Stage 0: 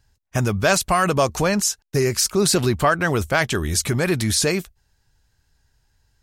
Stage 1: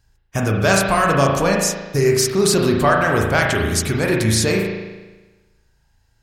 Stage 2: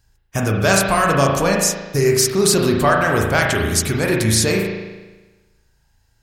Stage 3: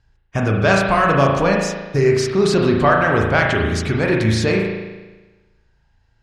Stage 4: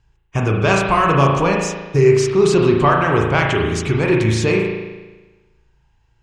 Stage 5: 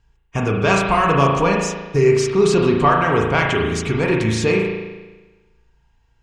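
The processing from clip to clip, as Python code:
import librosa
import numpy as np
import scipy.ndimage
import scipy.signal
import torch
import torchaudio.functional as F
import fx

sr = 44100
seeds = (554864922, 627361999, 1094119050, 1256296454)

y1 = fx.rev_spring(x, sr, rt60_s=1.2, pass_ms=(36,), chirp_ms=70, drr_db=-0.5)
y2 = fx.high_shelf(y1, sr, hz=6500.0, db=5.0)
y3 = scipy.signal.sosfilt(scipy.signal.butter(2, 3300.0, 'lowpass', fs=sr, output='sos'), y2)
y3 = y3 * 10.0 ** (1.0 / 20.0)
y4 = fx.ripple_eq(y3, sr, per_octave=0.7, db=7)
y5 = y4 + 0.33 * np.pad(y4, (int(4.3 * sr / 1000.0), 0))[:len(y4)]
y5 = y5 * 10.0 ** (-1.0 / 20.0)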